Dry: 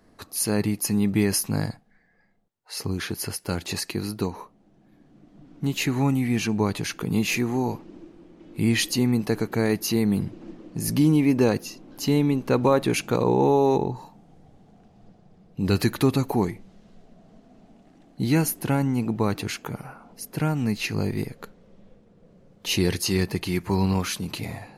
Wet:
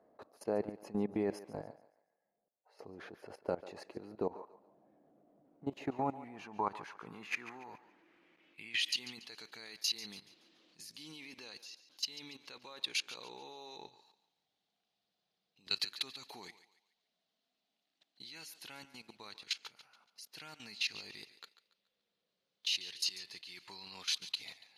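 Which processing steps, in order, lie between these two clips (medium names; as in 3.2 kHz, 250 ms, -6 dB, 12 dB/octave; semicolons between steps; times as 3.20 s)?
band-pass sweep 600 Hz -> 3.9 kHz, 5.72–9.37 s; level held to a coarse grid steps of 18 dB; thinning echo 142 ms, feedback 38%, high-pass 370 Hz, level -14.5 dB; trim +3.5 dB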